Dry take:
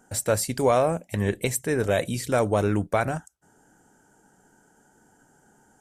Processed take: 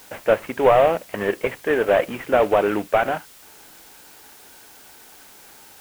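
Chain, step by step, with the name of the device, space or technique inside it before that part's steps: army field radio (band-pass 390–2900 Hz; CVSD coder 16 kbps; white noise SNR 25 dB); trim +8.5 dB

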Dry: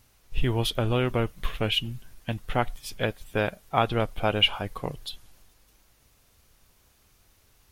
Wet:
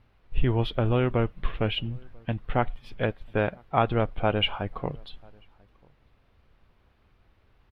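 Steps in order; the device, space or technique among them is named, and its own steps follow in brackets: shout across a valley (distance through air 410 m; echo from a far wall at 170 m, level -29 dB); trim +2 dB

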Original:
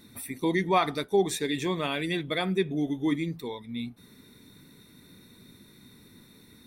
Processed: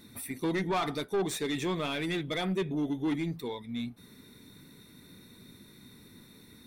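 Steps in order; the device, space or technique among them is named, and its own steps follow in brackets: saturation between pre-emphasis and de-emphasis (treble shelf 3.2 kHz +8.5 dB; saturation -24.5 dBFS, distortion -9 dB; treble shelf 3.2 kHz -8.5 dB)

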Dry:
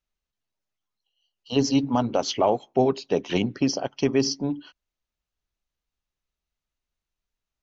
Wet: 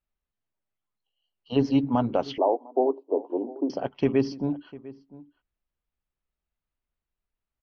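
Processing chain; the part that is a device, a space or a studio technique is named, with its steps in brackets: shout across a valley (distance through air 350 m; echo from a far wall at 120 m, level -19 dB); 2.38–3.70 s: elliptic band-pass 290–960 Hz, stop band 40 dB

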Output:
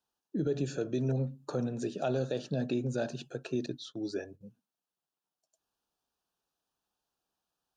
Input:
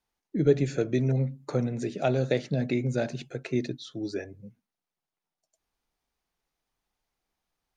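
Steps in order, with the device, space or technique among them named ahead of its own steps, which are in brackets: 3.66–4.41 s: gate -45 dBFS, range -15 dB; PA system with an anti-feedback notch (high-pass 160 Hz 6 dB/octave; Butterworth band-stop 2.1 kHz, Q 2.7; peak limiter -20 dBFS, peak gain reduction 9.5 dB); trim -2 dB

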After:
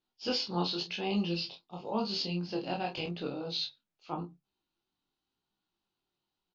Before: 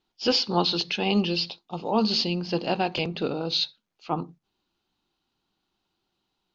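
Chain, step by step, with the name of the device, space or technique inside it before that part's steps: double-tracked vocal (doubling 29 ms -6 dB; chorus 0.9 Hz, delay 15.5 ms, depth 6.8 ms); trim -7 dB

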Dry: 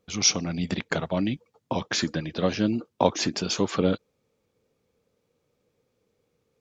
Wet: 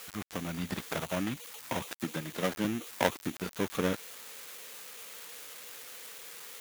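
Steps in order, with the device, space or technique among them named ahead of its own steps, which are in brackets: 1.93–2.65 s: high-pass 110 Hz 24 dB/octave; budget class-D amplifier (dead-time distortion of 0.29 ms; zero-crossing glitches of -20 dBFS); peaking EQ 1.5 kHz +5.5 dB 2.1 oct; trim -8 dB

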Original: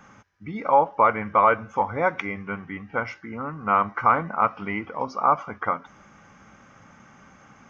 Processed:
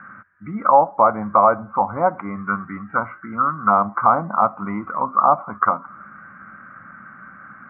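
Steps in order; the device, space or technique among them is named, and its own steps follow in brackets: envelope filter bass rig (touch-sensitive low-pass 800–1600 Hz down, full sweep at -19.5 dBFS; cabinet simulation 85–2300 Hz, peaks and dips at 200 Hz +5 dB, 450 Hz -9 dB, 850 Hz -9 dB, 1.3 kHz +6 dB); trim +2 dB

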